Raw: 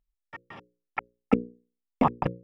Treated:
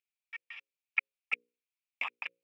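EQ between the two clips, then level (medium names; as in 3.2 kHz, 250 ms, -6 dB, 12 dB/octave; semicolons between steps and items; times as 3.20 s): resonant high-pass 2.4 kHz, resonance Q 6.4; -4.5 dB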